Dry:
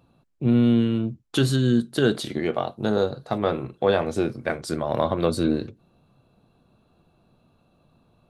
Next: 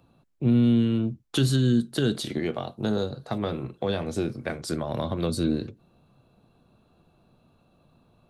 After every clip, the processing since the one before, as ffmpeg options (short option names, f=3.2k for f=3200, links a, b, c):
-filter_complex "[0:a]acrossover=split=280|3000[a][b][c];[b]acompressor=threshold=-30dB:ratio=4[d];[a][d][c]amix=inputs=3:normalize=0"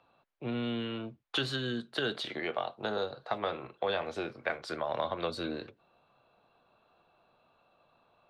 -filter_complex "[0:a]acrossover=split=520 4000:gain=0.1 1 0.0708[a][b][c];[a][b][c]amix=inputs=3:normalize=0,volume=2dB"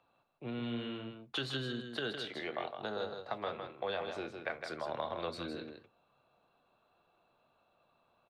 -af "aecho=1:1:160:0.473,volume=-5.5dB"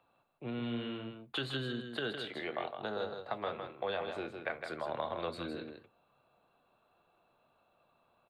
-af "equalizer=f=5.7k:t=o:w=0.43:g=-13.5,volume=1dB"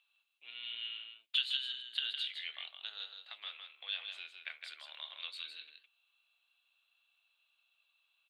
-af "highpass=f=3k:t=q:w=3.1,volume=-1dB"